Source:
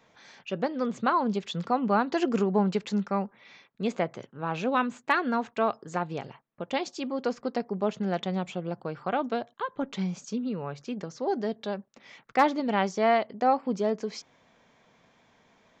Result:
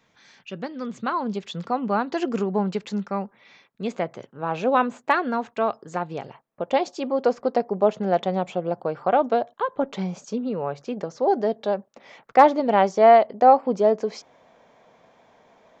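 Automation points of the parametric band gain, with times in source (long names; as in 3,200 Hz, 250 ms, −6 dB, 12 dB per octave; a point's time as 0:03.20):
parametric band 630 Hz 1.7 octaves
0:00.82 −5.5 dB
0:01.41 +1.5 dB
0:03.96 +1.5 dB
0:04.95 +11.5 dB
0:05.36 +3.5 dB
0:06.12 +3.5 dB
0:06.71 +11 dB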